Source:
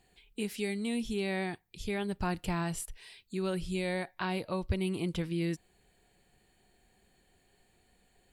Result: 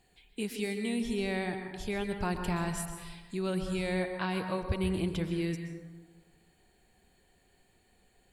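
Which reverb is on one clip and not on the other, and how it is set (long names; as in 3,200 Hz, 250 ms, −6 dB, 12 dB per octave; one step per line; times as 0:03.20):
dense smooth reverb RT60 1.4 s, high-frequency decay 0.35×, pre-delay 110 ms, DRR 5.5 dB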